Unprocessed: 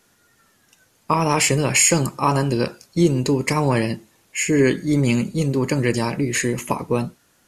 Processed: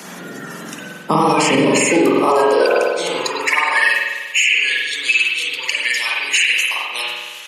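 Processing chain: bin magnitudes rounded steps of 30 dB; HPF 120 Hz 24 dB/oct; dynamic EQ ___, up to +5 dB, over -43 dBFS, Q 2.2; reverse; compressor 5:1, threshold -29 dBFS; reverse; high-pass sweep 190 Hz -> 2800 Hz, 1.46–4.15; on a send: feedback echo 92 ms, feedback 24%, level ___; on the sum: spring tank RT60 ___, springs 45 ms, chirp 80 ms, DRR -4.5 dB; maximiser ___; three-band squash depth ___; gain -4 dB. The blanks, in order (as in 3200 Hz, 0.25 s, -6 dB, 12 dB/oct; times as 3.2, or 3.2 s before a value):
3400 Hz, -23.5 dB, 1.1 s, +19 dB, 40%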